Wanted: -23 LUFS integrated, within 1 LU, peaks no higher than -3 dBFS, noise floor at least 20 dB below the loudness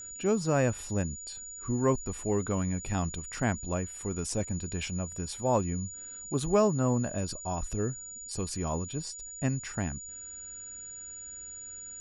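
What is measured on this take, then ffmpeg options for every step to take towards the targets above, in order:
steady tone 6.9 kHz; tone level -41 dBFS; loudness -32.0 LUFS; peak level -13.0 dBFS; loudness target -23.0 LUFS
-> -af "bandreject=f=6900:w=30"
-af "volume=2.82"

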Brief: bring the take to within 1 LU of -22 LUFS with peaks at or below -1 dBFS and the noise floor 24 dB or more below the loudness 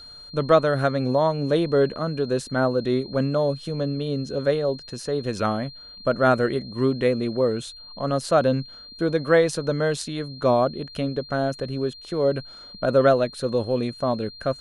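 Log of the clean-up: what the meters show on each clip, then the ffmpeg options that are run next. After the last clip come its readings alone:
steady tone 4.2 kHz; tone level -41 dBFS; loudness -23.5 LUFS; peak level -5.0 dBFS; loudness target -22.0 LUFS
-> -af "bandreject=f=4200:w=30"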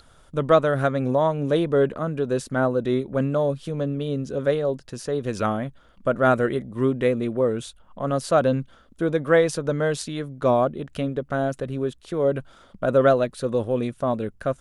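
steady tone not found; loudness -23.5 LUFS; peak level -5.0 dBFS; loudness target -22.0 LUFS
-> -af "volume=1.19"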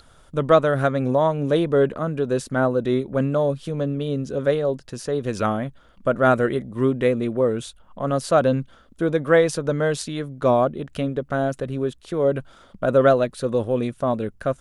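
loudness -22.0 LUFS; peak level -3.5 dBFS; noise floor -53 dBFS

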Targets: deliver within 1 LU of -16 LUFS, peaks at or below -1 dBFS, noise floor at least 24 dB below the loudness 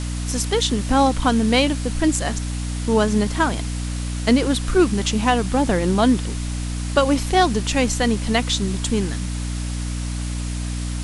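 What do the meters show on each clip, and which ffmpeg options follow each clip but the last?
hum 60 Hz; highest harmonic 300 Hz; hum level -23 dBFS; noise floor -26 dBFS; noise floor target -45 dBFS; loudness -21.0 LUFS; peak level -3.0 dBFS; loudness target -16.0 LUFS
-> -af "bandreject=f=60:t=h:w=6,bandreject=f=120:t=h:w=6,bandreject=f=180:t=h:w=6,bandreject=f=240:t=h:w=6,bandreject=f=300:t=h:w=6"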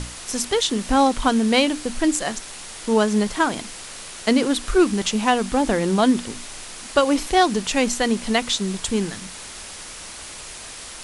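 hum not found; noise floor -37 dBFS; noise floor target -45 dBFS
-> -af "afftdn=nr=8:nf=-37"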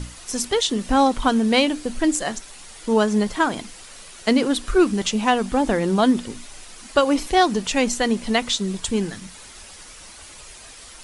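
noise floor -43 dBFS; noise floor target -45 dBFS
-> -af "afftdn=nr=6:nf=-43"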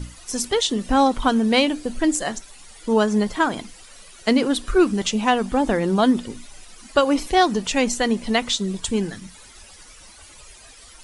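noise floor -46 dBFS; loudness -21.0 LUFS; peak level -4.0 dBFS; loudness target -16.0 LUFS
-> -af "volume=1.78,alimiter=limit=0.891:level=0:latency=1"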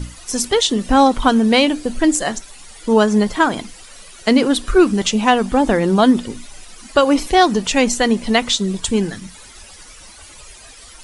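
loudness -16.0 LUFS; peak level -1.0 dBFS; noise floor -41 dBFS

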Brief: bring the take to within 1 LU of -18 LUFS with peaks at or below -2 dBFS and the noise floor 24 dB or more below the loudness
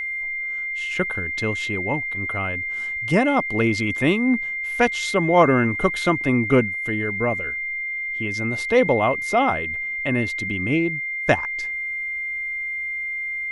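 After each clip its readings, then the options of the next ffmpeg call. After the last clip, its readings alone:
steady tone 2.1 kHz; tone level -25 dBFS; loudness -22.0 LUFS; peak level -3.5 dBFS; loudness target -18.0 LUFS
-> -af "bandreject=f=2100:w=30"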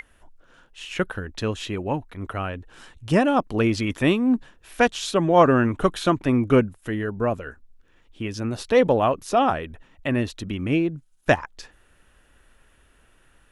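steady tone not found; loudness -23.0 LUFS; peak level -3.5 dBFS; loudness target -18.0 LUFS
-> -af "volume=1.78,alimiter=limit=0.794:level=0:latency=1"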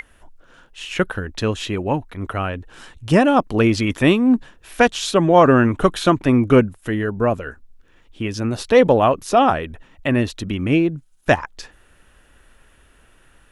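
loudness -18.5 LUFS; peak level -2.0 dBFS; noise floor -54 dBFS

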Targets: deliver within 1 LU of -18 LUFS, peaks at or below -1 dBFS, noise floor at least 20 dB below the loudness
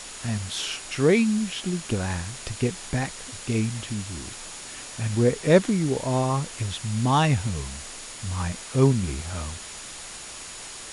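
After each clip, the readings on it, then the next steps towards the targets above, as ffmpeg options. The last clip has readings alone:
steady tone 6.9 kHz; tone level -46 dBFS; noise floor -40 dBFS; noise floor target -46 dBFS; loudness -25.5 LUFS; peak level -5.0 dBFS; loudness target -18.0 LUFS
-> -af "bandreject=f=6900:w=30"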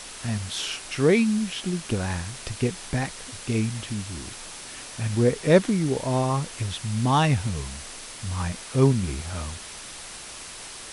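steady tone not found; noise floor -40 dBFS; noise floor target -46 dBFS
-> -af "afftdn=nr=6:nf=-40"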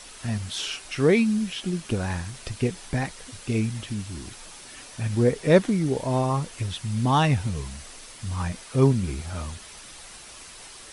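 noise floor -45 dBFS; noise floor target -46 dBFS
-> -af "afftdn=nr=6:nf=-45"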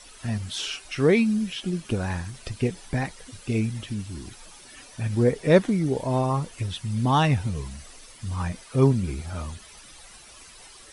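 noise floor -48 dBFS; loudness -25.5 LUFS; peak level -5.5 dBFS; loudness target -18.0 LUFS
-> -af "volume=2.37,alimiter=limit=0.891:level=0:latency=1"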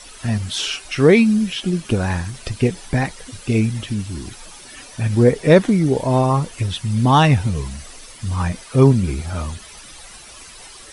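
loudness -18.5 LUFS; peak level -1.0 dBFS; noise floor -41 dBFS

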